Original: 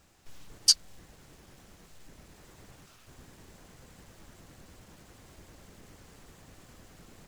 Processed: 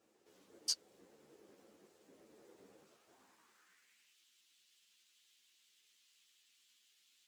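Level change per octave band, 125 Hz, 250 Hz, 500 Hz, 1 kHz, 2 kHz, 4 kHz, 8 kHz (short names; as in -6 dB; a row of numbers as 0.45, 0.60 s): -26.5, -12.5, -7.5, -13.5, -13.5, -15.5, -15.0 dB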